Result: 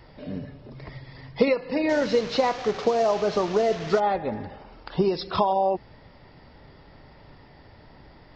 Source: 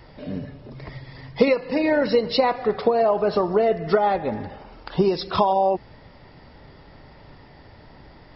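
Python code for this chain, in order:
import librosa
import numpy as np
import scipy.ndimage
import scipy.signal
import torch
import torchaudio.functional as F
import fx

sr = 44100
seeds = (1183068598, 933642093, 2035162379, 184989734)

y = fx.delta_mod(x, sr, bps=32000, step_db=-26.5, at=(1.89, 4.0))
y = F.gain(torch.from_numpy(y), -3.0).numpy()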